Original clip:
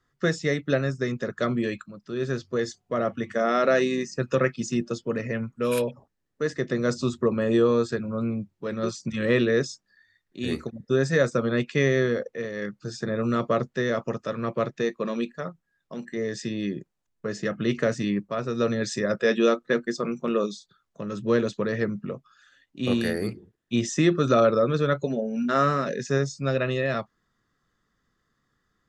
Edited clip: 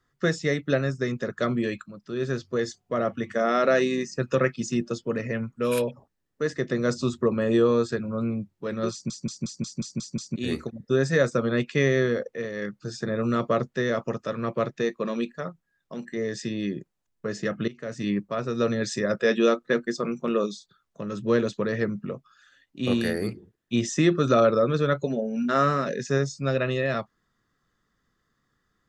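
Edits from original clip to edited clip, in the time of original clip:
8.92 stutter in place 0.18 s, 8 plays
17.68–18.09 fade in quadratic, from -19.5 dB

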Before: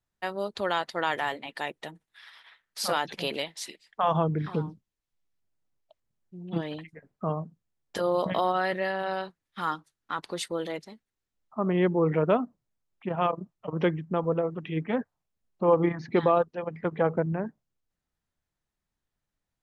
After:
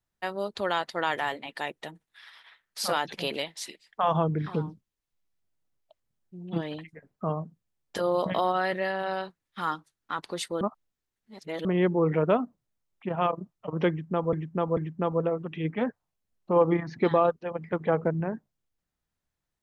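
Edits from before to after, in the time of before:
10.61–11.65 reverse
13.89–14.33 loop, 3 plays

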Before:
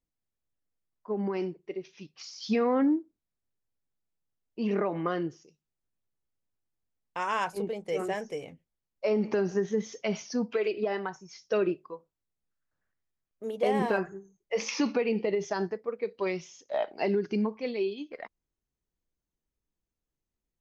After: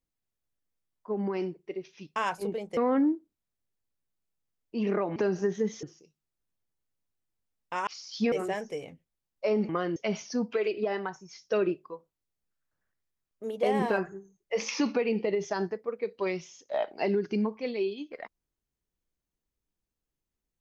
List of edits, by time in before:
2.16–2.61 swap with 7.31–7.92
5–5.27 swap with 9.29–9.96

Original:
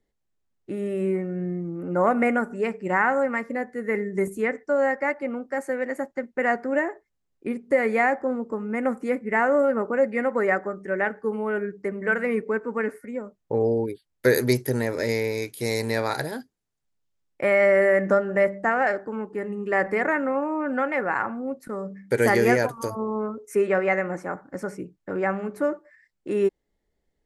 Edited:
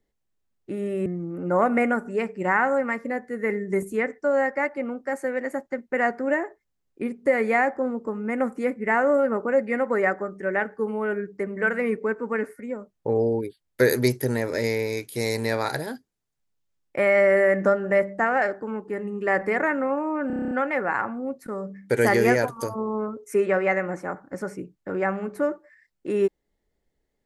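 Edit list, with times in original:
1.06–1.51 cut
20.72 stutter 0.03 s, 9 plays

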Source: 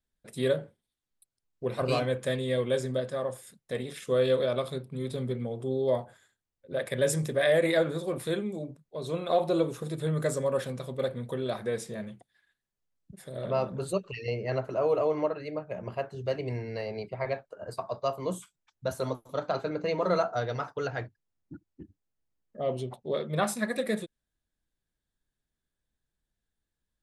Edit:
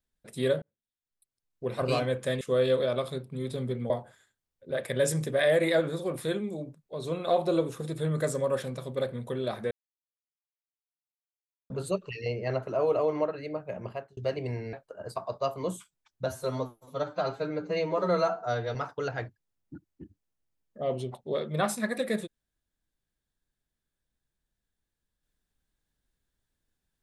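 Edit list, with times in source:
0.62–1.8 fade in
2.41–4.01 cut
5.5–5.92 cut
11.73–13.72 mute
15.86–16.19 fade out
16.75–17.35 cut
18.88–20.54 stretch 1.5×

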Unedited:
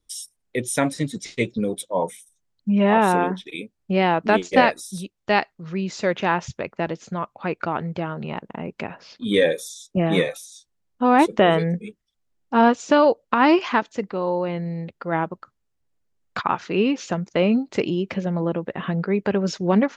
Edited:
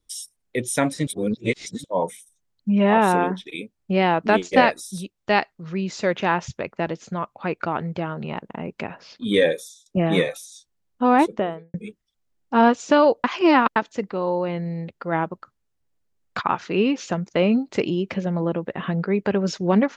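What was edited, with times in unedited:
1.07–1.84 reverse
9.49–9.86 fade out, to -23.5 dB
11.05–11.74 studio fade out
13.24–13.76 reverse

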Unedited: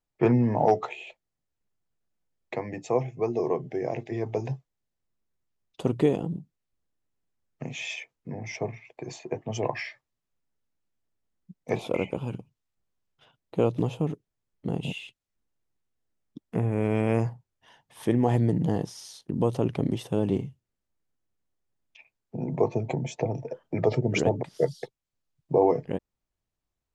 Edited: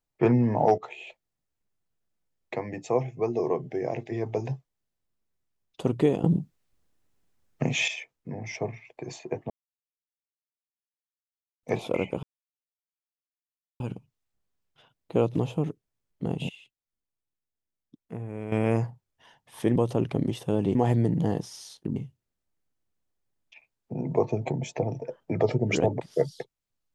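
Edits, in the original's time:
0.78–1.05 fade in, from -12 dB
6.24–7.88 gain +9.5 dB
9.5–11.63 mute
12.23 insert silence 1.57 s
14.92–16.95 gain -10 dB
19.4–20.39 move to 18.19

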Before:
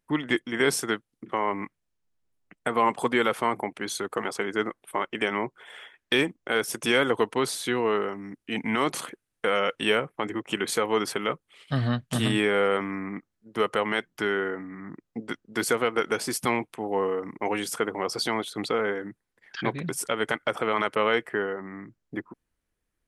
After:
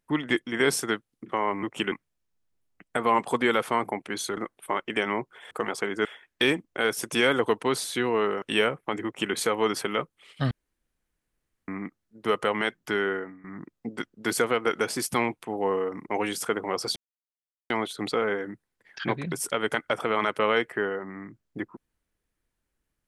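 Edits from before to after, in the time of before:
4.08–4.62 move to 5.76
8.13–9.73 cut
10.36–10.65 copy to 1.63
11.82–12.99 room tone
14.43–14.75 fade out, to -17 dB
18.27 insert silence 0.74 s

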